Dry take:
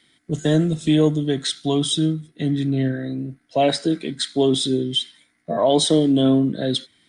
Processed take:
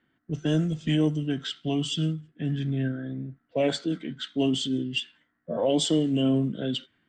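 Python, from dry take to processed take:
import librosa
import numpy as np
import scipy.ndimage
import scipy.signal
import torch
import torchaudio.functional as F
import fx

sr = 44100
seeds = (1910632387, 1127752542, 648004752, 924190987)

y = fx.formant_shift(x, sr, semitones=-2)
y = fx.env_lowpass(y, sr, base_hz=1400.0, full_db=-13.0)
y = F.gain(torch.from_numpy(y), -6.5).numpy()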